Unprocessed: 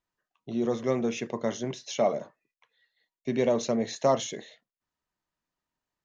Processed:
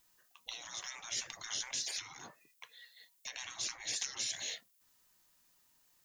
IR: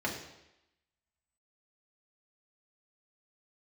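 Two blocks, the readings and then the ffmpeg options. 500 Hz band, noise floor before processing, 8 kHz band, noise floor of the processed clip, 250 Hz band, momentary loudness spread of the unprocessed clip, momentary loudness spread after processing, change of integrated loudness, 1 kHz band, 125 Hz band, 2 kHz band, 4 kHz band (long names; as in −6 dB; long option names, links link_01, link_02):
−33.5 dB, below −85 dBFS, can't be measured, −71 dBFS, −34.0 dB, 10 LU, 18 LU, −10.0 dB, −18.5 dB, −26.0 dB, −2.5 dB, +2.0 dB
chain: -af "acompressor=threshold=-36dB:ratio=12,afftfilt=real='re*lt(hypot(re,im),0.00708)':imag='im*lt(hypot(re,im),0.00708)':win_size=1024:overlap=0.75,crystalizer=i=5:c=0,volume=6.5dB"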